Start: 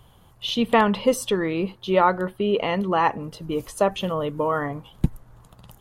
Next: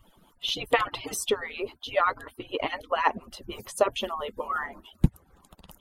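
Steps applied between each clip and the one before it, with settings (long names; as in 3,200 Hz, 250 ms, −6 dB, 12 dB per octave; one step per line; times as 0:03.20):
harmonic-percussive split with one part muted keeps percussive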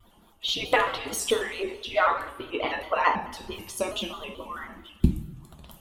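gain on a spectral selection 0:03.52–0:05.40, 380–2,200 Hz −9 dB
coupled-rooms reverb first 0.61 s, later 2.2 s, from −19 dB, DRR 2 dB
pitch modulation by a square or saw wave square 4.6 Hz, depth 100 cents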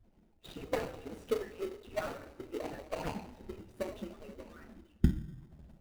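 running median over 41 samples
in parallel at −9 dB: sample-rate reduction 1,700 Hz, jitter 0%
on the sum: level −8 dB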